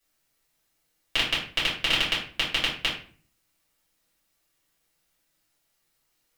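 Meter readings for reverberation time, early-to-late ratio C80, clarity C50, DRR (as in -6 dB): 0.45 s, 10.0 dB, 5.5 dB, -8.5 dB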